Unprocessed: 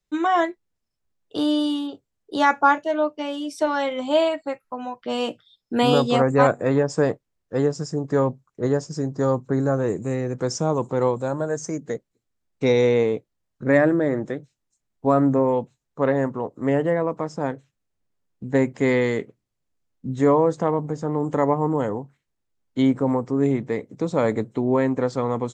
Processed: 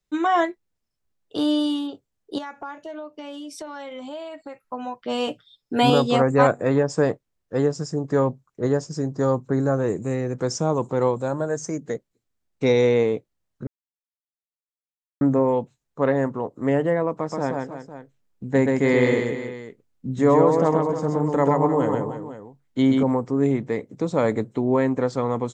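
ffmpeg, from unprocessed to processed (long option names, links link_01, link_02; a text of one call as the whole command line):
ffmpeg -i in.wav -filter_complex "[0:a]asettb=1/sr,asplit=3[link_01][link_02][link_03];[link_01]atrim=end=2.384[link_04];[link_02]atrim=start=2.38:end=4.62,asetpts=PTS-STARTPTS,afade=type=in:duration=0.004:curve=qsin,afade=type=out:start_time=2.236:duration=0.004:curve=qsin,acompressor=threshold=-33dB:ratio=5:attack=3.2:release=140:knee=1:detection=peak[link_05];[link_03]atrim=start=4.616[link_06];[link_04][link_05]acrossfade=duration=0.004:curve1=hsin:curve2=qsin[link_07];[link_07][link_06]acrossfade=duration=0.004:curve1=qsin:curve2=hsin,asettb=1/sr,asplit=3[link_08][link_09][link_10];[link_08]atrim=end=5.274[link_11];[link_09]atrim=start=5.27:end=5.9,asetpts=PTS-STARTPTS,afade=type=in:duration=0.004:curve=qsin,afade=type=out:start_time=0.626:duration=0.004:curve=qsin,aecho=1:1:7:0.65,atrim=end_sample=27783[link_12];[link_10]atrim=start=5.896[link_13];[link_11][link_12]acrossfade=duration=0.004:curve1=hsin:curve2=qsin[link_14];[link_14][link_13]acrossfade=duration=0.004:curve1=qsin:curve2=hsin,asettb=1/sr,asplit=3[link_15][link_16][link_17];[link_15]atrim=end=17.164[link_18];[link_16]atrim=start=17.16:end=23.03,asetpts=PTS-STARTPTS,afade=type=in:duration=0.004:curve=qsin,afade=type=out:start_time=5.866:duration=0.004:curve=qsin,aecho=1:1:128|308|505:0.708|0.266|0.2,atrim=end_sample=258867[link_19];[link_17]atrim=start=23.026[link_20];[link_18][link_19]acrossfade=duration=0.004:curve1=hsin:curve2=qsin[link_21];[link_21][link_20]acrossfade=duration=0.004:curve1=qsin:curve2=hsin,asplit=3[link_22][link_23][link_24];[link_22]atrim=end=13.67,asetpts=PTS-STARTPTS,afade=type=out:start_time=13.666:duration=0.004:curve=hsin[link_25];[link_23]atrim=start=13.67:end=15.21,asetpts=PTS-STARTPTS,volume=0[link_26];[link_24]atrim=start=15.21,asetpts=PTS-STARTPTS,afade=type=in:duration=0.004:curve=hsin[link_27];[link_25][link_26][link_27]concat=n=3:v=0:a=1" out.wav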